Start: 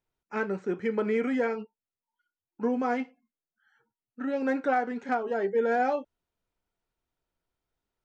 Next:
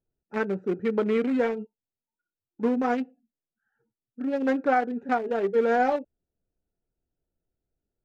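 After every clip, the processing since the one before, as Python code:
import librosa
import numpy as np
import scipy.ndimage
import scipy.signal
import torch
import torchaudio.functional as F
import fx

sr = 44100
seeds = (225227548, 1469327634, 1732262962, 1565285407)

y = fx.wiener(x, sr, points=41)
y = y * librosa.db_to_amplitude(4.0)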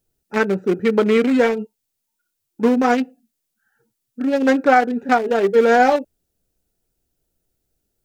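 y = fx.high_shelf(x, sr, hz=3600.0, db=12.0)
y = y * librosa.db_to_amplitude(8.5)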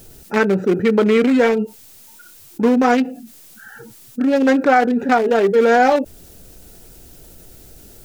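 y = fx.env_flatten(x, sr, amount_pct=50)
y = y * librosa.db_to_amplitude(-1.0)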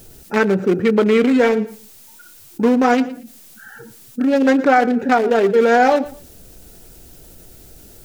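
y = fx.echo_feedback(x, sr, ms=116, feedback_pct=26, wet_db=-18.0)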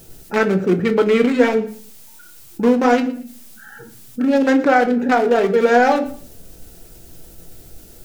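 y = fx.room_shoebox(x, sr, seeds[0], volume_m3=180.0, walls='furnished', distance_m=0.71)
y = y * librosa.db_to_amplitude(-1.0)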